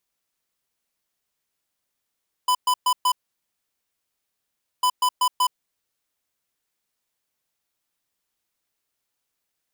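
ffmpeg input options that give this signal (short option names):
-f lavfi -i "aevalsrc='0.112*(2*lt(mod(1000*t,1),0.5)-1)*clip(min(mod(mod(t,2.35),0.19),0.07-mod(mod(t,2.35),0.19))/0.005,0,1)*lt(mod(t,2.35),0.76)':d=4.7:s=44100"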